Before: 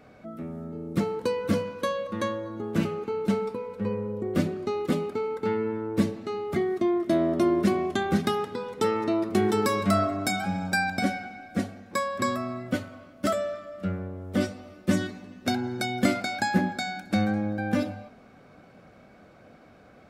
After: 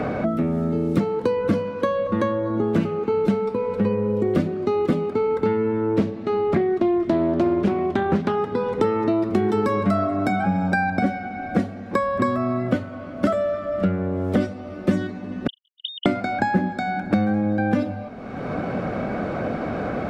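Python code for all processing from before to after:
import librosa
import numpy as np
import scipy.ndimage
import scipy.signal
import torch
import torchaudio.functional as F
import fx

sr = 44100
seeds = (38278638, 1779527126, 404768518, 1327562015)

y = fx.chain(x, sr, fx.high_shelf(hz=8600.0, db=-10.5),
    fx.doppler_dist(depth_ms=0.46), at=(5.92, 8.38))
y = fx.chain(y, sr, fx.sine_speech(),
    fx.brickwall_highpass(low_hz=2900.0),
    fx.transient(attack_db=5, sustain_db=-8), at=(15.47, 16.06))
y = fx.lowpass(y, sr, hz=1300.0, slope=6)
y = fx.band_squash(y, sr, depth_pct=100)
y = F.gain(torch.from_numpy(y), 5.5).numpy()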